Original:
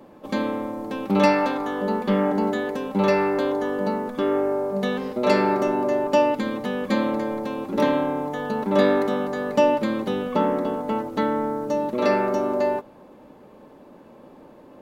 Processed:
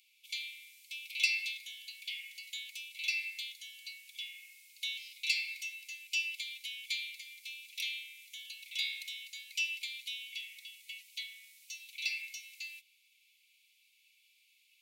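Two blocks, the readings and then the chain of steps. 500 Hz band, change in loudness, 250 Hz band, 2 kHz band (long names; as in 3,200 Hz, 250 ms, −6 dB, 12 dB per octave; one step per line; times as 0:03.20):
below −40 dB, −15.0 dB, below −40 dB, −5.5 dB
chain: Chebyshev high-pass filter 2,200 Hz, order 8
level +1.5 dB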